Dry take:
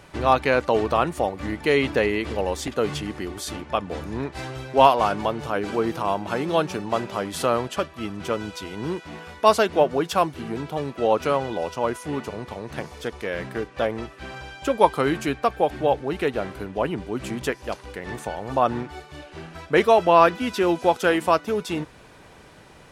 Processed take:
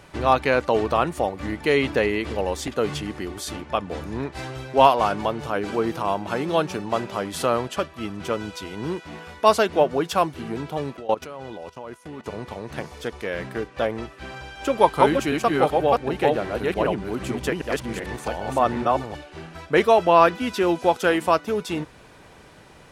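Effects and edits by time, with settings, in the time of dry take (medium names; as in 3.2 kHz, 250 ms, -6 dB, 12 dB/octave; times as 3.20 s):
10.97–12.26 s: level held to a coarse grid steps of 18 dB
14.17–19.17 s: chunks repeated in reverse 383 ms, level -1 dB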